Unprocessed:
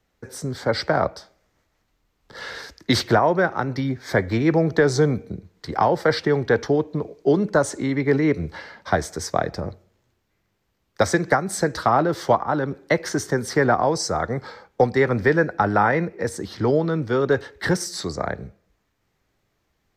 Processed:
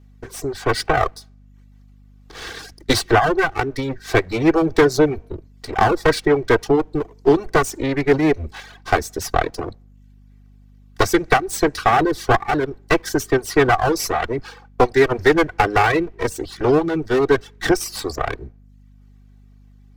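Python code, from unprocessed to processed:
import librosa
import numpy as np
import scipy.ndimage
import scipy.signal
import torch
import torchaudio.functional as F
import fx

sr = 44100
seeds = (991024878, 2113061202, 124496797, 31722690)

y = fx.lower_of_two(x, sr, delay_ms=2.6)
y = fx.dereverb_blind(y, sr, rt60_s=0.58)
y = fx.add_hum(y, sr, base_hz=50, snr_db=28)
y = y * 10.0 ** (4.5 / 20.0)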